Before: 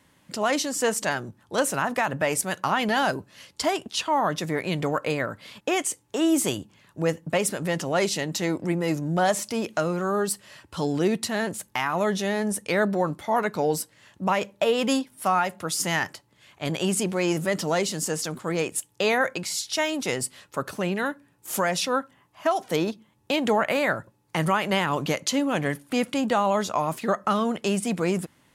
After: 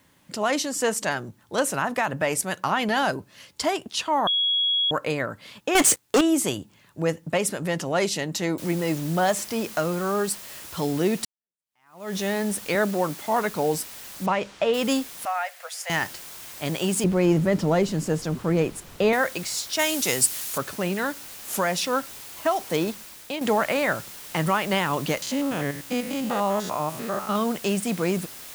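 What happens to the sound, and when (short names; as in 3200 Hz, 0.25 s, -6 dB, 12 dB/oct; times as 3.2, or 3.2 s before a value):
4.27–4.91 bleep 3330 Hz -19.5 dBFS
5.75–6.21 sample leveller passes 5
8.58 noise floor step -69 dB -41 dB
11.25–12.16 fade in exponential
12.75–13.26 HPF 150 Hz
14.26–14.74 air absorption 110 m
15.25–15.9 rippled Chebyshev high-pass 490 Hz, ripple 9 dB
17.04–19.13 tilt -3 dB/oct
19.79–20.58 bell 12000 Hz +11.5 dB 2.3 oct
22.85–23.41 fade out, to -8 dB
25.22–27.36 stepped spectrum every 0.1 s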